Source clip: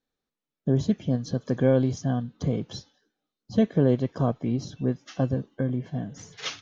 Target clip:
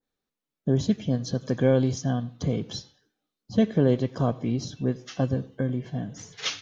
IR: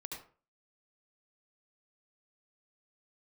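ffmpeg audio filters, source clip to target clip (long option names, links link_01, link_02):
-filter_complex "[0:a]asplit=2[link_01][link_02];[1:a]atrim=start_sample=2205,adelay=10[link_03];[link_02][link_03]afir=irnorm=-1:irlink=0,volume=-15.5dB[link_04];[link_01][link_04]amix=inputs=2:normalize=0,adynamicequalizer=threshold=0.00631:dfrequency=1900:dqfactor=0.7:tfrequency=1900:tqfactor=0.7:attack=5:release=100:ratio=0.375:range=2.5:mode=boostabove:tftype=highshelf"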